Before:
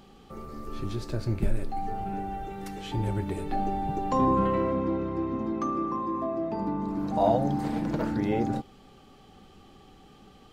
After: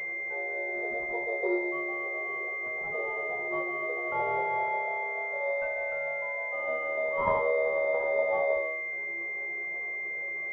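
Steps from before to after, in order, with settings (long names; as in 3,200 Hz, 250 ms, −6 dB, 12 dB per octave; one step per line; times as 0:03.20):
hum removal 49.12 Hz, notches 28
in parallel at +1.5 dB: upward compression, threshold −30 dBFS
on the sum: stiff-string resonator 72 Hz, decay 0.35 s, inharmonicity 0.002
frequency shifter +340 Hz
switching amplifier with a slow clock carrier 2,100 Hz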